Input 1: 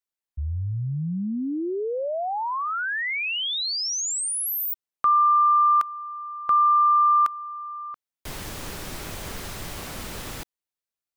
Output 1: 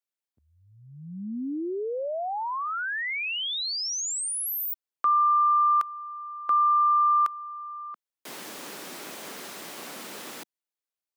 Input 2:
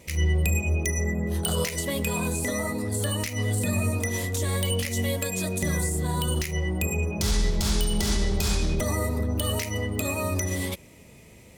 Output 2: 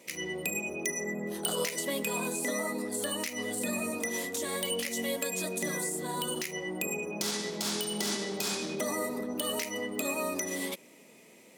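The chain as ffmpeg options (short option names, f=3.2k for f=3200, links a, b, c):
-af "highpass=f=220:w=0.5412,highpass=f=220:w=1.3066,volume=-3dB"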